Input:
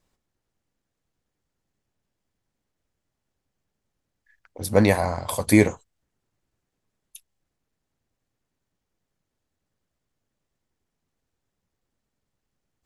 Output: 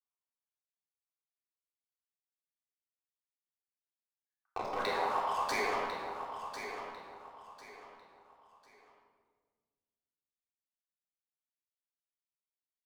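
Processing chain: median-filter separation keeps percussive; LPF 5700 Hz 24 dB/oct; gate -50 dBFS, range -25 dB; HPF 1100 Hz 12 dB/oct; resonant high shelf 1600 Hz -14 dB, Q 3; sample leveller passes 3; limiter -29.5 dBFS, peak gain reduction 17 dB; level quantiser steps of 23 dB; feedback echo 1.048 s, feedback 30%, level -9 dB; shoebox room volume 1600 m³, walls mixed, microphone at 3.6 m; gain +7.5 dB

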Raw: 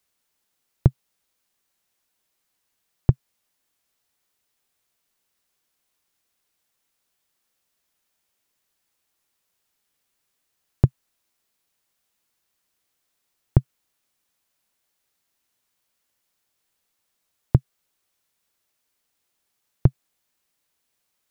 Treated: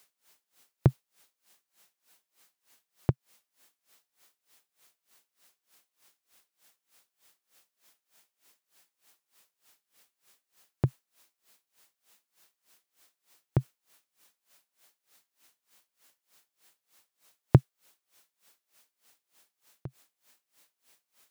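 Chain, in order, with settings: HPF 290 Hz 6 dB/oct; maximiser +14 dB; dB-linear tremolo 3.3 Hz, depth 25 dB

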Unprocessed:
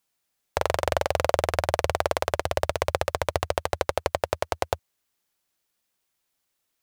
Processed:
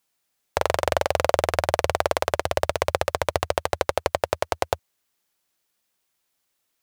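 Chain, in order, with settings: low shelf 120 Hz -4 dB; gain +2.5 dB

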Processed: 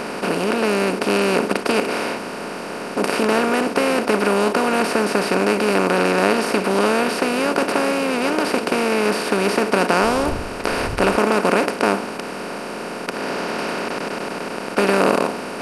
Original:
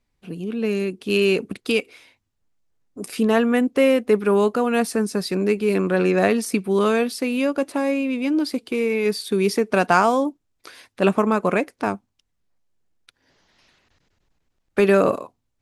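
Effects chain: per-bin compression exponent 0.2; 10–11.16 wind noise 83 Hz -23 dBFS; gain -7 dB

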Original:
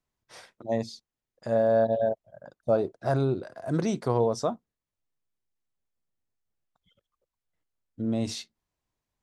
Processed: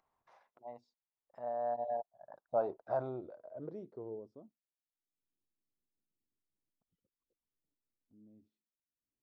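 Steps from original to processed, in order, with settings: Doppler pass-by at 2.72, 20 m/s, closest 6.4 m; in parallel at +1 dB: limiter -25.5 dBFS, peak gain reduction 11.5 dB; on the sum: low-pass sweep 880 Hz -> 290 Hz, 2.82–4.47; upward compressor, threshold -46 dBFS; pre-emphasis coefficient 0.97; gain +7 dB

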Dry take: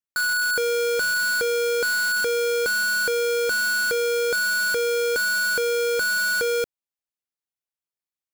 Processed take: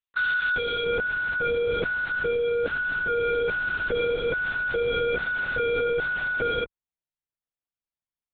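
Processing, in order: tilt +4 dB/oct, from 0.84 s -1.5 dB/oct; LPC vocoder at 8 kHz whisper; gain -3 dB

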